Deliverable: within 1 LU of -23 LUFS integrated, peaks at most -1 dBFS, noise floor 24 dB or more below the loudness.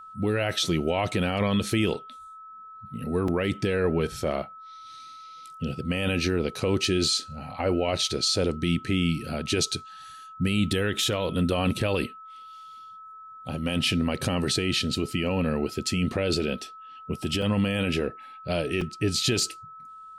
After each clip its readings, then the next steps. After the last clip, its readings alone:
dropouts 4; longest dropout 3.1 ms; steady tone 1300 Hz; tone level -42 dBFS; loudness -26.5 LUFS; peak -13.5 dBFS; loudness target -23.0 LUFS
-> interpolate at 1.94/3.28/17.42/18.81, 3.1 ms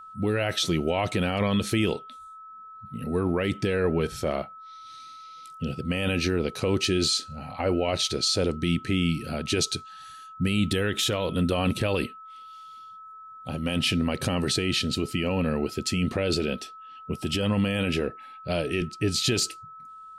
dropouts 0; steady tone 1300 Hz; tone level -42 dBFS
-> notch 1300 Hz, Q 30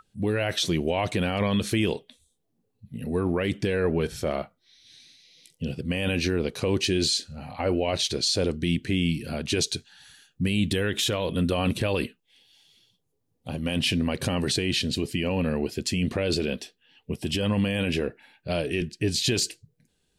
steady tone none; loudness -26.5 LUFS; peak -13.5 dBFS; loudness target -23.0 LUFS
-> gain +3.5 dB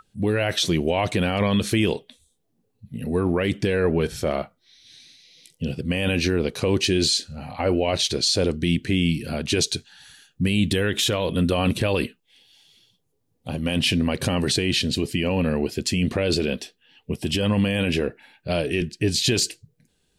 loudness -23.0 LUFS; peak -10.0 dBFS; noise floor -70 dBFS

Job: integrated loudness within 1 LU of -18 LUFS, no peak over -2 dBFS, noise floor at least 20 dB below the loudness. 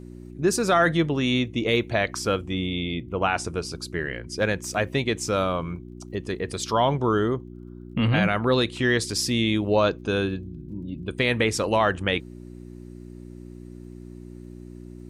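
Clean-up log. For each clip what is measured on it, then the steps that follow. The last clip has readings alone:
ticks 19/s; hum 60 Hz; harmonics up to 360 Hz; hum level -38 dBFS; loudness -24.5 LUFS; peak -9.5 dBFS; loudness target -18.0 LUFS
-> de-click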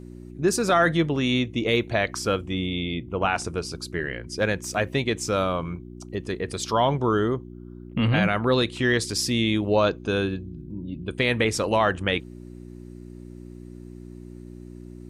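ticks 0/s; hum 60 Hz; harmonics up to 360 Hz; hum level -38 dBFS
-> de-hum 60 Hz, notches 6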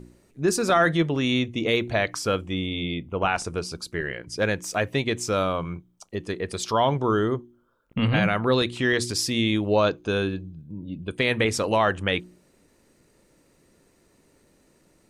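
hum none; loudness -24.5 LUFS; peak -9.0 dBFS; loudness target -18.0 LUFS
-> gain +6.5 dB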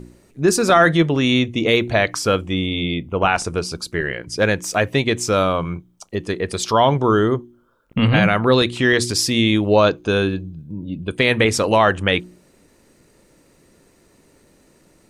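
loudness -18.0 LUFS; peak -2.5 dBFS; noise floor -56 dBFS

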